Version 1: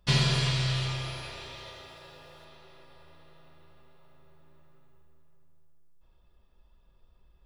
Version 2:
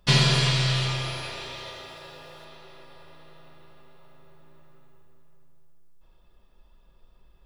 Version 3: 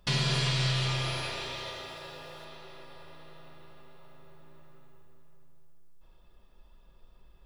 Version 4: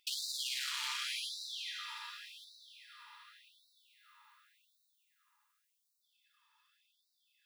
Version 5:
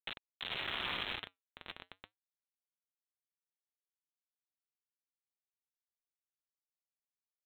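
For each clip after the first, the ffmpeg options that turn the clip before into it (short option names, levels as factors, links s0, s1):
-af "equalizer=f=75:t=o:w=0.88:g=-9,volume=2"
-af "alimiter=limit=0.126:level=0:latency=1:release=472"
-af "volume=37.6,asoftclip=hard,volume=0.0266,afftfilt=real='re*gte(b*sr/1024,830*pow(3700/830,0.5+0.5*sin(2*PI*0.88*pts/sr)))':imag='im*gte(b*sr/1024,830*pow(3700/830,0.5+0.5*sin(2*PI*0.88*pts/sr)))':win_size=1024:overlap=0.75"
-af "aresample=8000,acrusher=bits=5:mix=0:aa=0.000001,aresample=44100,flanger=delay=0.4:depth=5.5:regen=-79:speed=0.31:shape=sinusoidal,acrusher=bits=8:mode=log:mix=0:aa=0.000001,volume=1.88"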